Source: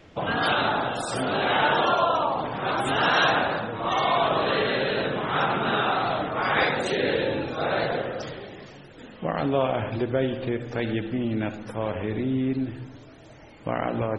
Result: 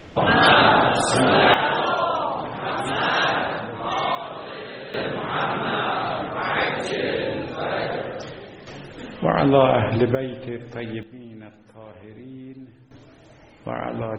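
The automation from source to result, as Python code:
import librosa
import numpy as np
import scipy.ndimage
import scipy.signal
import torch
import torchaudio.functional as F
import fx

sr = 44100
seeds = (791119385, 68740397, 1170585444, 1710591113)

y = fx.gain(x, sr, db=fx.steps((0.0, 9.5), (1.54, 0.0), (4.15, -11.0), (4.94, 0.0), (8.67, 8.0), (10.15, -3.5), (11.03, -14.0), (12.91, -1.0)))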